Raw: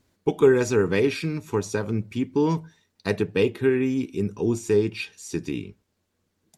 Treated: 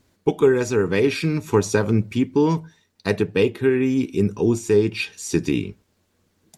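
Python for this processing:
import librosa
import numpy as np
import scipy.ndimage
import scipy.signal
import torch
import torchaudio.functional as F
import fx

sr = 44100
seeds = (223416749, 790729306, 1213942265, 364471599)

y = fx.rider(x, sr, range_db=4, speed_s=0.5)
y = y * librosa.db_to_amplitude(4.0)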